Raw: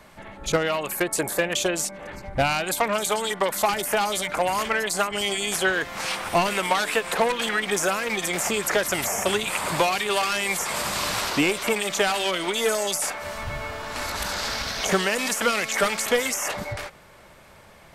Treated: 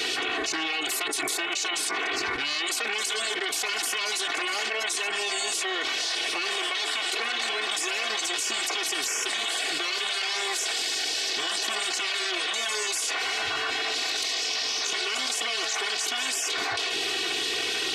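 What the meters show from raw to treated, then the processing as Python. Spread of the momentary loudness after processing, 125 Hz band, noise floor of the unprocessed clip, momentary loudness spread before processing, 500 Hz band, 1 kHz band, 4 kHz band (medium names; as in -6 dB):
1 LU, under -20 dB, -50 dBFS, 6 LU, -11.0 dB, -7.0 dB, +3.5 dB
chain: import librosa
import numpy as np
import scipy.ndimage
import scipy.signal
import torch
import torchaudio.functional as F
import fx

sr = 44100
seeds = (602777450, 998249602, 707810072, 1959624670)

y = fx.bandpass_edges(x, sr, low_hz=760.0, high_hz=4200.0)
y = fx.spec_gate(y, sr, threshold_db=-10, keep='weak')
y = fx.peak_eq(y, sr, hz=1000.0, db=-7.0, octaves=2.4)
y = y + 0.89 * np.pad(y, (int(2.7 * sr / 1000.0), 0))[:len(y)]
y = fx.env_flatten(y, sr, amount_pct=100)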